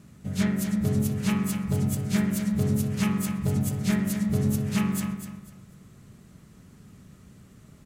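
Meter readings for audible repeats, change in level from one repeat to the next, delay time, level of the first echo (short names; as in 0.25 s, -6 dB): 3, -11.5 dB, 0.248 s, -9.5 dB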